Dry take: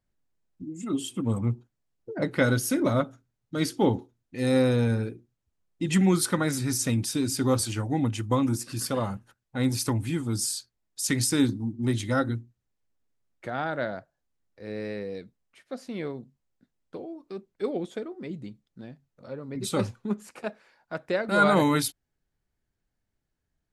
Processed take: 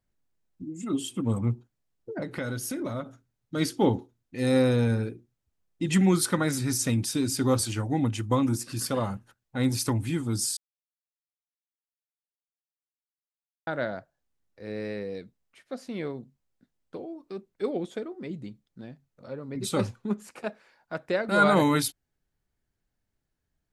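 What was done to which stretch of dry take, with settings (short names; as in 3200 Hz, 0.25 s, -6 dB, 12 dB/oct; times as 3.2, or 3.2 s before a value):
2.19–3.06 compressor 3:1, threshold -31 dBFS
10.57–13.67 mute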